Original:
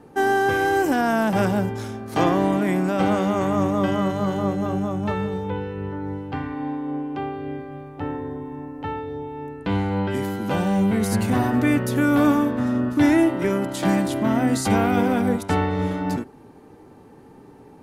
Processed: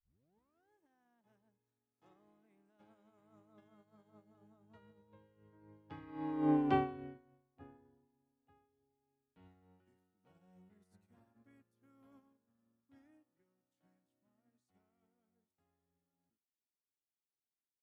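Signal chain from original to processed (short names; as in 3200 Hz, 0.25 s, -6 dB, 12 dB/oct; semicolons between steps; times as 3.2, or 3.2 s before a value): tape start at the beginning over 0.76 s; Doppler pass-by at 6.62, 23 m/s, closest 6.2 m; upward expander 2.5:1, over -49 dBFS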